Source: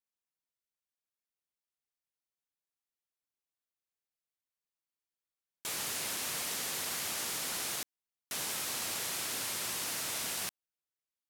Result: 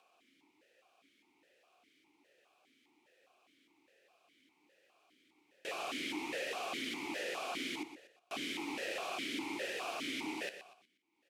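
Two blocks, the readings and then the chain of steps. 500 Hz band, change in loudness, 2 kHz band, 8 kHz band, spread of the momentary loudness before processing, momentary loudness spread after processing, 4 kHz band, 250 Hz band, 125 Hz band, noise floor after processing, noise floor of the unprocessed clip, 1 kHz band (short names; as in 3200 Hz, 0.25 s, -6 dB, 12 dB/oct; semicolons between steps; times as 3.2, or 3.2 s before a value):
+5.0 dB, -5.0 dB, +0.5 dB, -16.0 dB, 4 LU, 6 LU, -4.5 dB, +8.5 dB, -8.5 dB, -76 dBFS, under -85 dBFS, +1.0 dB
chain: bell 360 Hz +7.5 dB 0.66 oct; upward compressor, threshold -43 dBFS; feedback echo 0.121 s, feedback 37%, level -11 dB; vowel sequencer 4.9 Hz; gain +12.5 dB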